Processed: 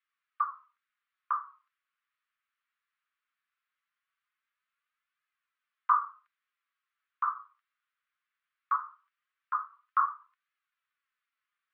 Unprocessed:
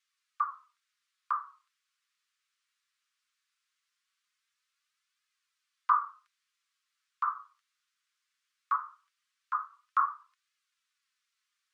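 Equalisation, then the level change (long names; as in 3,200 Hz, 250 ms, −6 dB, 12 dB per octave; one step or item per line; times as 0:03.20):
high-pass filter 950 Hz
low-pass filter 1,300 Hz 6 dB per octave
high-frequency loss of the air 330 metres
+6.5 dB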